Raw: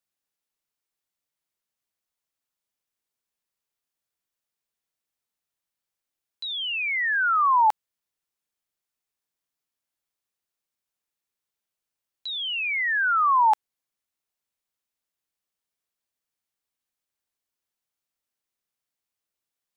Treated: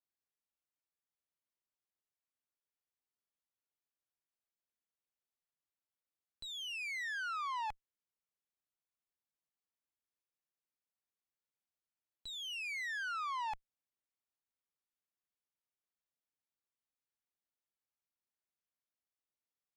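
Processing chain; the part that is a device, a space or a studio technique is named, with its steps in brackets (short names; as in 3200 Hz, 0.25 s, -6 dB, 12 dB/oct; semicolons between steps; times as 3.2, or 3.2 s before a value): dynamic EQ 1000 Hz, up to -5 dB, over -30 dBFS, Q 0.83; tube preamp driven hard (tube stage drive 32 dB, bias 0.75; high shelf 3500 Hz -8.5 dB); gain -4.5 dB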